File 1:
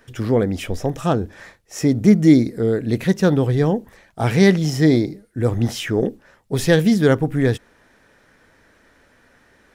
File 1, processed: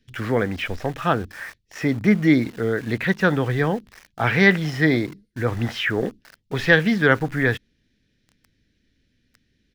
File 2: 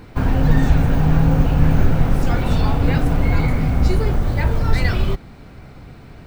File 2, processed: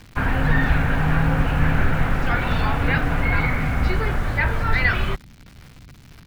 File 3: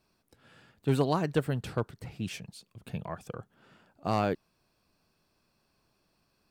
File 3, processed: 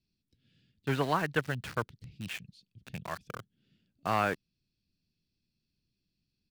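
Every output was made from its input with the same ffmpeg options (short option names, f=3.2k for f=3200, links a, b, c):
-filter_complex "[0:a]firequalizer=gain_entry='entry(360,0);entry(1600,14);entry(8100,-16)':delay=0.05:min_phase=1,acrossover=split=300|3900[a][b][c];[b]aeval=exprs='val(0)*gte(abs(val(0)),0.0188)':c=same[d];[a][d][c]amix=inputs=3:normalize=0,volume=-5dB"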